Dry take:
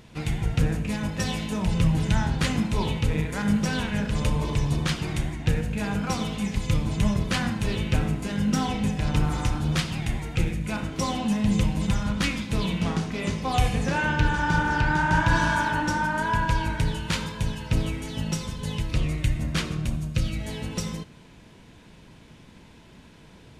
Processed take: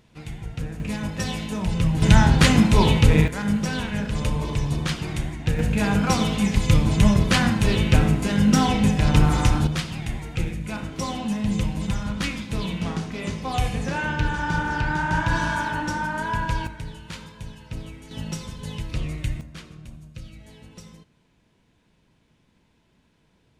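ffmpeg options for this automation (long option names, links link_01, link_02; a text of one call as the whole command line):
ffmpeg -i in.wav -af "asetnsamples=nb_out_samples=441:pad=0,asendcmd='0.8 volume volume 0dB;2.02 volume volume 9dB;3.28 volume volume 0dB;5.59 volume volume 6.5dB;9.67 volume volume -1.5dB;16.67 volume volume -10dB;18.11 volume volume -3dB;19.41 volume volume -14dB',volume=-8dB" out.wav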